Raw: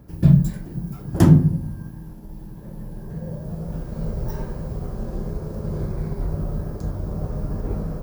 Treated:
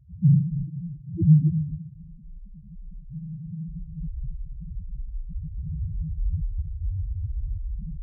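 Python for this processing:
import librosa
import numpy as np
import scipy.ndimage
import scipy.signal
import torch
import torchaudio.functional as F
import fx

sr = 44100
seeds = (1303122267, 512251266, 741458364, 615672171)

y = fx.peak_eq(x, sr, hz=75.0, db=7.5, octaves=1.0, at=(5.38, 7.59))
y = fx.spec_topn(y, sr, count=1)
y = y + 10.0 ** (-12.0 / 20.0) * np.pad(y, (int(274 * sr / 1000.0), 0))[:len(y)]
y = F.gain(torch.from_numpy(y), 2.5).numpy()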